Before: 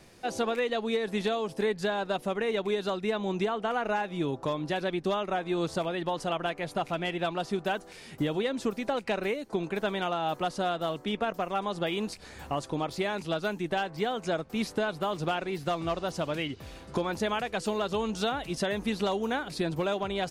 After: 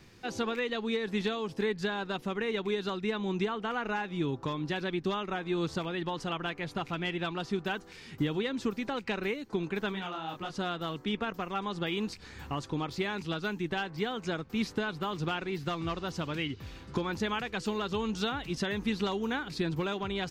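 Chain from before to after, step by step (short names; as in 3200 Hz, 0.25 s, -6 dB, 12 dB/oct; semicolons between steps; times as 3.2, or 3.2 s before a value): fifteen-band EQ 100 Hz +4 dB, 630 Hz -11 dB, 10000 Hz -12 dB; 9.92–10.53 detuned doubles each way 46 cents -> 33 cents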